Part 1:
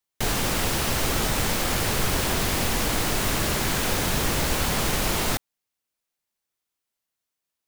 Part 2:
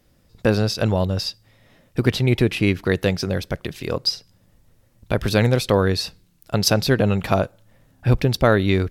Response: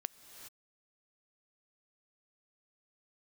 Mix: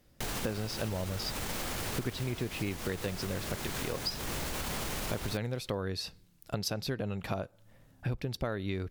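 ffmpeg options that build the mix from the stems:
-filter_complex "[0:a]alimiter=limit=-21dB:level=0:latency=1:release=95,volume=-3.5dB,asplit=2[link_01][link_02];[link_02]volume=-11dB[link_03];[1:a]volume=-4.5dB[link_04];[2:a]atrim=start_sample=2205[link_05];[link_03][link_05]afir=irnorm=-1:irlink=0[link_06];[link_01][link_04][link_06]amix=inputs=3:normalize=0,acompressor=threshold=-32dB:ratio=5"

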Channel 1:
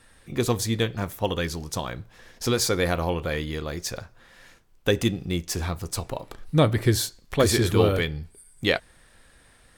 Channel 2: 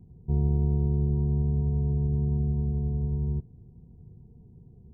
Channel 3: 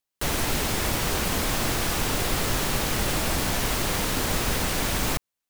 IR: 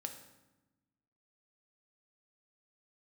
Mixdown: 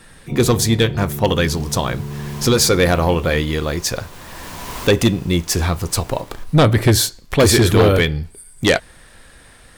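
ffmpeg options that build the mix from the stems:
-filter_complex "[0:a]aeval=exprs='0.501*sin(PI/2*2.24*val(0)/0.501)':channel_layout=same,volume=-0.5dB,asplit=2[link_01][link_02];[1:a]highpass=160,volume=3dB[link_03];[2:a]equalizer=frequency=1000:width=6.4:gain=11.5,adelay=1050,volume=-3.5dB,asplit=2[link_04][link_05];[link_05]volume=-19dB[link_06];[link_02]apad=whole_len=288426[link_07];[link_04][link_07]sidechaincompress=threshold=-32dB:ratio=10:attack=21:release=776[link_08];[link_06]aecho=0:1:215|430|645|860|1075|1290|1505:1|0.47|0.221|0.104|0.0488|0.0229|0.0108[link_09];[link_01][link_03][link_08][link_09]amix=inputs=4:normalize=0"

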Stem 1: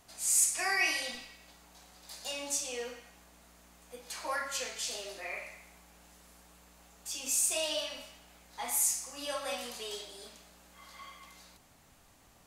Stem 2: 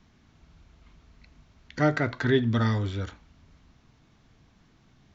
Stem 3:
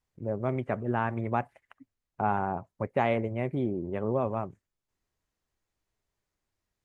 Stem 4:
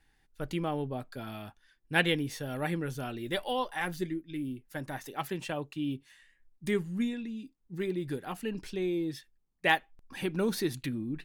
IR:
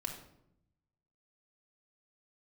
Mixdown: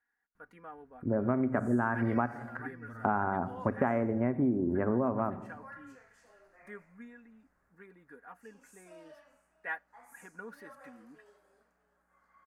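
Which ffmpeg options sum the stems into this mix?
-filter_complex "[0:a]adelay=1350,volume=-18.5dB,asplit=2[link_01][link_02];[link_02]volume=-20dB[link_03];[1:a]acompressor=threshold=-27dB:ratio=6,adelay=350,volume=-17.5dB[link_04];[2:a]equalizer=frequency=250:width=3.4:gain=9.5,adelay=850,volume=1.5dB,asplit=2[link_05][link_06];[link_06]volume=-8dB[link_07];[3:a]highpass=frequency=790:poles=1,aecho=1:1:4.2:0.68,volume=-13dB[link_08];[4:a]atrim=start_sample=2205[link_09];[link_07][link_09]afir=irnorm=-1:irlink=0[link_10];[link_03]aecho=0:1:639|1278|1917|2556|3195|3834:1|0.41|0.168|0.0689|0.0283|0.0116[link_11];[link_01][link_04][link_05][link_08][link_10][link_11]amix=inputs=6:normalize=0,highshelf=frequency=2300:width_type=q:width=3:gain=-13.5,acompressor=threshold=-25dB:ratio=6"

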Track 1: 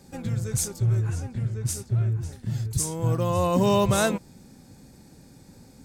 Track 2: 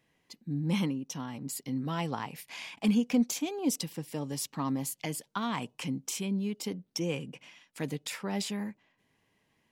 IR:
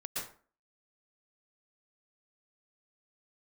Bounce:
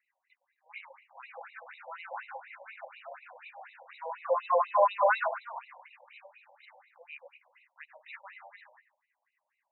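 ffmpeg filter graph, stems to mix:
-filter_complex "[0:a]adynamicequalizer=threshold=0.00355:dfrequency=2900:dqfactor=1.7:tfrequency=2900:tqfactor=1.7:attack=5:release=100:ratio=0.375:range=2:mode=cutabove:tftype=bell,adelay=1100,volume=2.5dB,asplit=2[link_01][link_02];[link_02]volume=-3.5dB[link_03];[1:a]volume=-4.5dB,asplit=2[link_04][link_05];[link_05]volume=-5dB[link_06];[2:a]atrim=start_sample=2205[link_07];[link_03][link_06]amix=inputs=2:normalize=0[link_08];[link_08][link_07]afir=irnorm=-1:irlink=0[link_09];[link_01][link_04][link_09]amix=inputs=3:normalize=0,asuperstop=centerf=3300:order=4:qfactor=2.6,afftfilt=real='re*between(b*sr/1024,680*pow(2900/680,0.5+0.5*sin(2*PI*4.1*pts/sr))/1.41,680*pow(2900/680,0.5+0.5*sin(2*PI*4.1*pts/sr))*1.41)':imag='im*between(b*sr/1024,680*pow(2900/680,0.5+0.5*sin(2*PI*4.1*pts/sr))/1.41,680*pow(2900/680,0.5+0.5*sin(2*PI*4.1*pts/sr))*1.41)':win_size=1024:overlap=0.75"

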